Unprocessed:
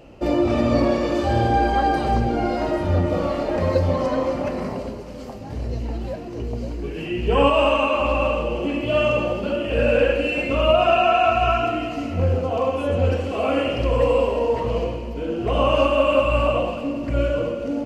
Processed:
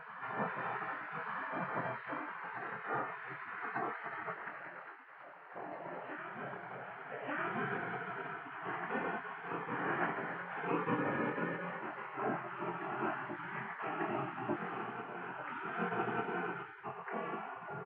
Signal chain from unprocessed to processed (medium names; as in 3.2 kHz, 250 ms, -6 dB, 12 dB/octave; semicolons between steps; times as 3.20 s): spectral gate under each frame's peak -25 dB weak; elliptic band-pass 130–1700 Hz, stop band 50 dB; on a send: reverse echo 1196 ms -7.5 dB; on the sum: dynamic bell 280 Hz, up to +7 dB, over -59 dBFS, Q 1.5; doubling 23 ms -7 dB; trim +1.5 dB